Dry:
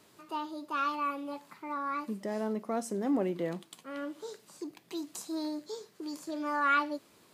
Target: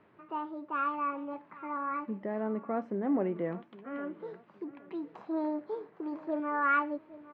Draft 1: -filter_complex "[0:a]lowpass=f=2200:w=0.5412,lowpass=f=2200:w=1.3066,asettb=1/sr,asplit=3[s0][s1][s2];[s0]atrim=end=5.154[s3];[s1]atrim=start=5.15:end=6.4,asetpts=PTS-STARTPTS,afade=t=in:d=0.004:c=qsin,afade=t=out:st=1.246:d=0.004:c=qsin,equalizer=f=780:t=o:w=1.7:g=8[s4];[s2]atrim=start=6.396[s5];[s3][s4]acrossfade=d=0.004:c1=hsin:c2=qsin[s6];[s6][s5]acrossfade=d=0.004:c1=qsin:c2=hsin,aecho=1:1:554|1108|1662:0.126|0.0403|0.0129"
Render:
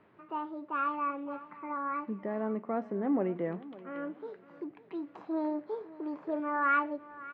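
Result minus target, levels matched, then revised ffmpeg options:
echo 260 ms early
-filter_complex "[0:a]lowpass=f=2200:w=0.5412,lowpass=f=2200:w=1.3066,asettb=1/sr,asplit=3[s0][s1][s2];[s0]atrim=end=5.154[s3];[s1]atrim=start=5.15:end=6.4,asetpts=PTS-STARTPTS,afade=t=in:d=0.004:c=qsin,afade=t=out:st=1.246:d=0.004:c=qsin,equalizer=f=780:t=o:w=1.7:g=8[s4];[s2]atrim=start=6.396[s5];[s3][s4]acrossfade=d=0.004:c1=hsin:c2=qsin[s6];[s6][s5]acrossfade=d=0.004:c1=qsin:c2=hsin,aecho=1:1:814|1628|2442:0.126|0.0403|0.0129"

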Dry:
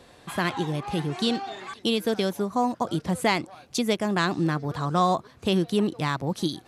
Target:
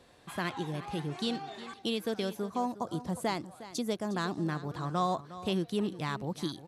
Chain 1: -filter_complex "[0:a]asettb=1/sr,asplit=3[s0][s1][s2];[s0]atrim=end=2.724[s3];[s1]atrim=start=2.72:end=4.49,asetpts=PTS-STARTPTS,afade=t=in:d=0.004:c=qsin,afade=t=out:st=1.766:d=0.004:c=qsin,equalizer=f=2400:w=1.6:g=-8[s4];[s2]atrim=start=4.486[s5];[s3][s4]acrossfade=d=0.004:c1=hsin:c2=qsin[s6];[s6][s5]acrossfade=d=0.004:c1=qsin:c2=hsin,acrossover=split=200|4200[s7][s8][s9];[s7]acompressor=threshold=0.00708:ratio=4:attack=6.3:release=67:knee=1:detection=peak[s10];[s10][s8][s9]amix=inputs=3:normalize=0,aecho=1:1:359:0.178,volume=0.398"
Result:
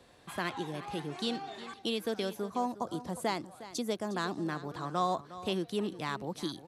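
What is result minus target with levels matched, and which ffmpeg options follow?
compression: peak gain reduction +13.5 dB
-filter_complex "[0:a]asettb=1/sr,asplit=3[s0][s1][s2];[s0]atrim=end=2.724[s3];[s1]atrim=start=2.72:end=4.49,asetpts=PTS-STARTPTS,afade=t=in:d=0.004:c=qsin,afade=t=out:st=1.766:d=0.004:c=qsin,equalizer=f=2400:w=1.6:g=-8[s4];[s2]atrim=start=4.486[s5];[s3][s4]acrossfade=d=0.004:c1=hsin:c2=qsin[s6];[s6][s5]acrossfade=d=0.004:c1=qsin:c2=hsin,aecho=1:1:359:0.178,volume=0.398"

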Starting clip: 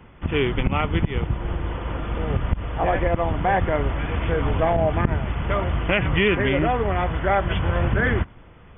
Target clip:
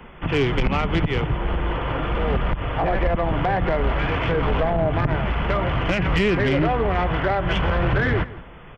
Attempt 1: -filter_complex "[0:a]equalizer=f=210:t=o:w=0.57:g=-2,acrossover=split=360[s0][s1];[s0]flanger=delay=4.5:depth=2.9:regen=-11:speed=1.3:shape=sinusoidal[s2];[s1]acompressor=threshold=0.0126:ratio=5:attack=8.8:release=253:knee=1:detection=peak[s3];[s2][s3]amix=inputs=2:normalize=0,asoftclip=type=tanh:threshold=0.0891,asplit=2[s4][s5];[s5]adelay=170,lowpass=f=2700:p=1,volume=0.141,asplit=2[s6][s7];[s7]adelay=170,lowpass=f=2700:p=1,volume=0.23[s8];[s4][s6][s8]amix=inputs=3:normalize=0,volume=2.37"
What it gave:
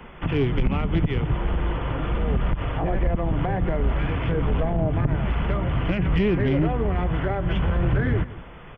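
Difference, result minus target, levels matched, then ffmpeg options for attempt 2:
compression: peak gain reduction +9 dB
-filter_complex "[0:a]equalizer=f=210:t=o:w=0.57:g=-2,acrossover=split=360[s0][s1];[s0]flanger=delay=4.5:depth=2.9:regen=-11:speed=1.3:shape=sinusoidal[s2];[s1]acompressor=threshold=0.0473:ratio=5:attack=8.8:release=253:knee=1:detection=peak[s3];[s2][s3]amix=inputs=2:normalize=0,asoftclip=type=tanh:threshold=0.0891,asplit=2[s4][s5];[s5]adelay=170,lowpass=f=2700:p=1,volume=0.141,asplit=2[s6][s7];[s7]adelay=170,lowpass=f=2700:p=1,volume=0.23[s8];[s4][s6][s8]amix=inputs=3:normalize=0,volume=2.37"

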